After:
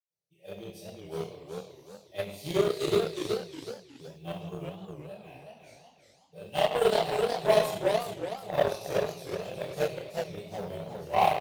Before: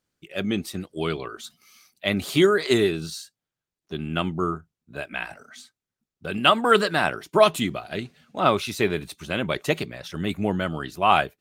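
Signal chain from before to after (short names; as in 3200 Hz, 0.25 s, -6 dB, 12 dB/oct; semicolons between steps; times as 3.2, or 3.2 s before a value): block floating point 7-bit; HPF 82 Hz; high shelf 3600 Hz +10.5 dB; fixed phaser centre 570 Hz, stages 4; doubler 29 ms -5 dB; reverb RT60 1.0 s, pre-delay 77 ms; added harmonics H 7 -20 dB, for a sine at -10.5 dBFS; warbling echo 0.367 s, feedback 35%, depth 203 cents, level -4 dB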